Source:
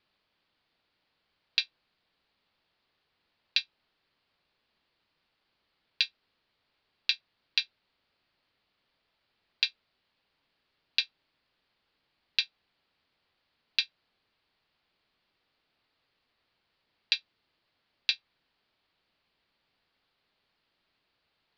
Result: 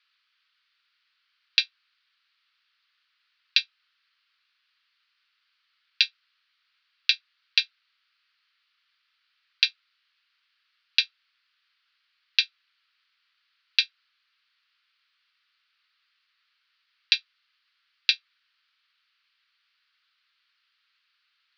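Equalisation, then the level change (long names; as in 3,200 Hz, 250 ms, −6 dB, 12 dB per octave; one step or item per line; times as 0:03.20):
elliptic band-pass filter 1,300–6,000 Hz, stop band 40 dB
+6.5 dB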